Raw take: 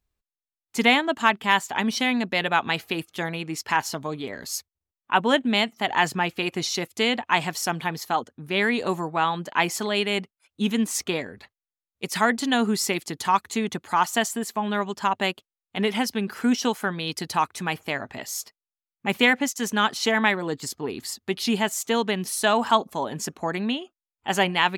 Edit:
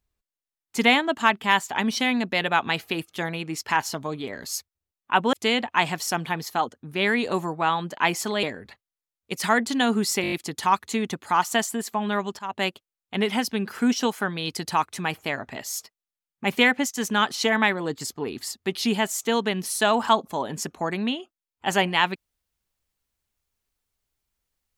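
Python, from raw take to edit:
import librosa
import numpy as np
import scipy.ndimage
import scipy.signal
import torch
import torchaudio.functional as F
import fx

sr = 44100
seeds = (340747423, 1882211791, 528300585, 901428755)

y = fx.edit(x, sr, fx.cut(start_s=5.33, length_s=1.55),
    fx.cut(start_s=9.98, length_s=1.17),
    fx.stutter(start_s=12.94, slice_s=0.02, count=6),
    fx.fade_in_from(start_s=15.01, length_s=0.27, floor_db=-20.5), tone=tone)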